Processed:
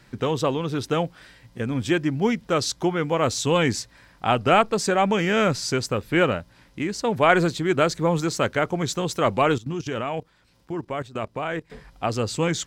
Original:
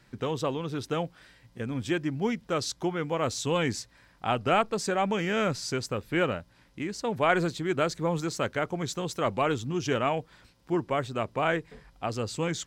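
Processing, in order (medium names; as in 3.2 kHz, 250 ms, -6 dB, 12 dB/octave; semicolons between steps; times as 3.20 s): 9.58–11.70 s: level held to a coarse grid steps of 17 dB; trim +6.5 dB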